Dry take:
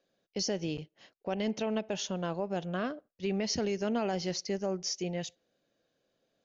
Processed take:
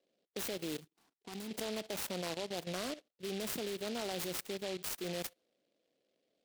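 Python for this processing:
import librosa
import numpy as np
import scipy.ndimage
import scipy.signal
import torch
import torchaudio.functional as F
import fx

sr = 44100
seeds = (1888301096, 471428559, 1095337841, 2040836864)

y = fx.env_lowpass(x, sr, base_hz=700.0, full_db=-29.0)
y = scipy.signal.sosfilt(scipy.signal.butter(2, 260.0, 'highpass', fs=sr, output='sos'), y)
y = fx.level_steps(y, sr, step_db=14)
y = fx.fixed_phaser(y, sr, hz=2100.0, stages=6, at=(0.8, 1.51))
y = fx.noise_mod_delay(y, sr, seeds[0], noise_hz=3100.0, depth_ms=0.14)
y = y * 10.0 ** (3.5 / 20.0)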